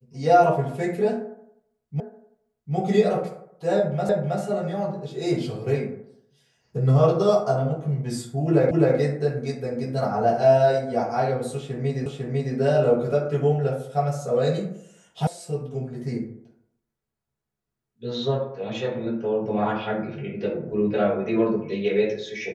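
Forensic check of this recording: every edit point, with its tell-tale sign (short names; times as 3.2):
2 repeat of the last 0.75 s
4.09 repeat of the last 0.32 s
8.71 repeat of the last 0.26 s
12.06 repeat of the last 0.5 s
15.27 sound cut off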